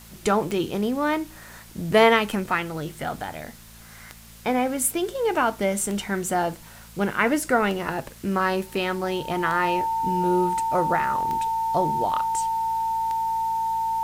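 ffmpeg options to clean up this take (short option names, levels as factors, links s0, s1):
-af "adeclick=t=4,bandreject=f=56:t=h:w=4,bandreject=f=112:t=h:w=4,bandreject=f=168:t=h:w=4,bandreject=f=224:t=h:w=4,bandreject=f=900:w=30,afwtdn=0.004"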